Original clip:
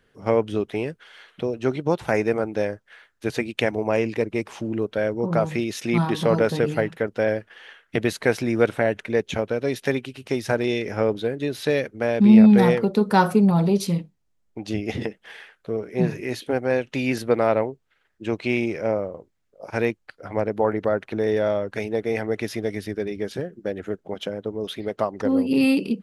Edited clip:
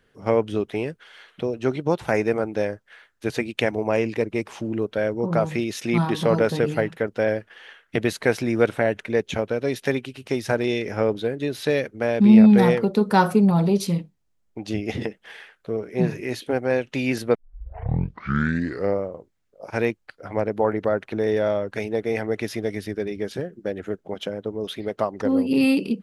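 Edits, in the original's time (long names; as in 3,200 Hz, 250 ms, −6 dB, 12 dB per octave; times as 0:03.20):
0:17.35: tape start 1.70 s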